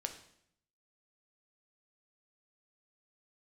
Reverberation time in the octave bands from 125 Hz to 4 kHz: 0.95, 0.85, 0.70, 0.65, 0.65, 0.65 seconds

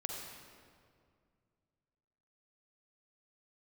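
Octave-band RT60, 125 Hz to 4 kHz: 3.1, 2.6, 2.3, 2.0, 1.7, 1.4 seconds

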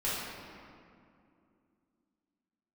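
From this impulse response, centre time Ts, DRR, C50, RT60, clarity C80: 134 ms, −10.5 dB, −2.5 dB, 2.5 s, 0.0 dB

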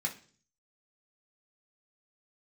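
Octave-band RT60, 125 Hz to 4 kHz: 0.70, 0.60, 0.50, 0.40, 0.40, 0.50 seconds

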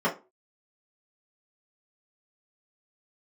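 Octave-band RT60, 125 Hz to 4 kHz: 0.25, 0.30, 0.30, 0.30, 0.25, 0.20 seconds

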